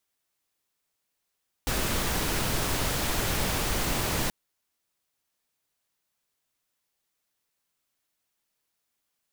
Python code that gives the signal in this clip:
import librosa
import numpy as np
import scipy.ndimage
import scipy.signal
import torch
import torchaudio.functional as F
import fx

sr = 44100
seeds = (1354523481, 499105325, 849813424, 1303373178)

y = fx.noise_colour(sr, seeds[0], length_s=2.63, colour='pink', level_db=-27.5)